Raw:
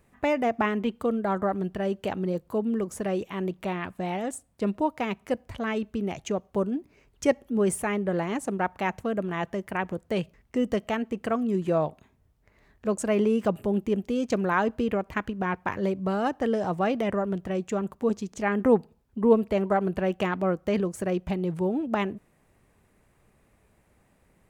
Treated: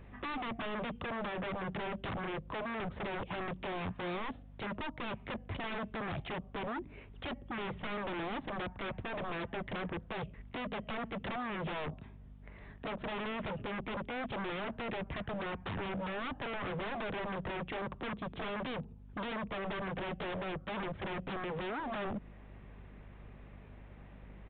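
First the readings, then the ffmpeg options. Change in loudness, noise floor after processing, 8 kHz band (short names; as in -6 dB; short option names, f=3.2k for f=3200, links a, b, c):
-11.5 dB, -53 dBFS, under -35 dB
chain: -filter_complex "[0:a]acrossover=split=100|220[a][b][c];[a]acompressor=threshold=-53dB:ratio=4[d];[b]acompressor=threshold=-30dB:ratio=4[e];[c]acompressor=threshold=-39dB:ratio=4[f];[d][e][f]amix=inputs=3:normalize=0,aresample=16000,volume=29dB,asoftclip=hard,volume=-29dB,aresample=44100,aeval=exprs='val(0)+0.00112*(sin(2*PI*50*n/s)+sin(2*PI*2*50*n/s)/2+sin(2*PI*3*50*n/s)/3+sin(2*PI*4*50*n/s)/4+sin(2*PI*5*50*n/s)/5)':c=same,aeval=exprs='0.01*(abs(mod(val(0)/0.01+3,4)-2)-1)':c=same,aresample=8000,aresample=44100,volume=7dB"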